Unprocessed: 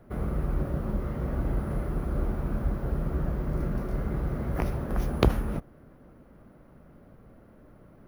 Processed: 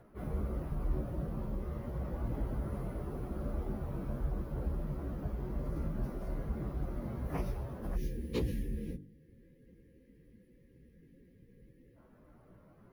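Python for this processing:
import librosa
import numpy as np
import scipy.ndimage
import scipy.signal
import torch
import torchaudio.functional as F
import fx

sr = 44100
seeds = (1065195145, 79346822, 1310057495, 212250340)

y = fx.dynamic_eq(x, sr, hz=1500.0, q=0.97, threshold_db=-56.0, ratio=4.0, max_db=-5)
y = fx.spec_box(y, sr, start_s=4.96, length_s=2.52, low_hz=550.0, high_hz=1600.0, gain_db=-26)
y = fx.peak_eq(y, sr, hz=1000.0, db=3.0, octaves=0.23)
y = fx.hum_notches(y, sr, base_hz=50, count=9)
y = fx.cheby_harmonics(y, sr, harmonics=(4, 5, 6, 8), levels_db=(-28, -21, -43, -35), full_scale_db=-6.0)
y = fx.stretch_vocoder_free(y, sr, factor=1.6)
y = fx.rider(y, sr, range_db=10, speed_s=2.0)
y = y * 10.0 ** (-7.0 / 20.0)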